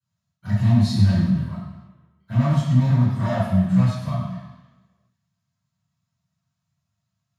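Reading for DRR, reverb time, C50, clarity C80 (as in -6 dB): -17.5 dB, 1.1 s, -1.0 dB, 2.0 dB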